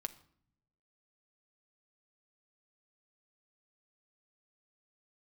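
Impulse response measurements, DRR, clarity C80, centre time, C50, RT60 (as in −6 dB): 9.0 dB, 20.0 dB, 4 ms, 16.5 dB, 0.60 s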